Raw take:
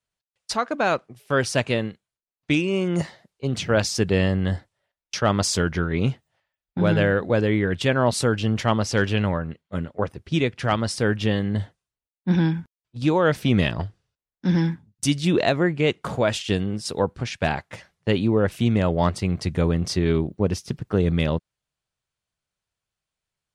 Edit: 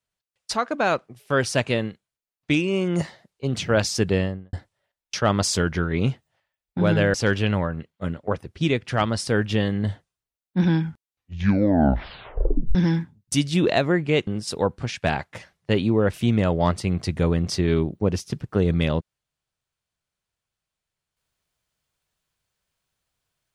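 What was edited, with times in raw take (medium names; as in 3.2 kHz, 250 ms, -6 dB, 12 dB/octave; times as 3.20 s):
4.06–4.53 s: studio fade out
7.14–8.85 s: delete
12.51 s: tape stop 1.95 s
15.98–16.65 s: delete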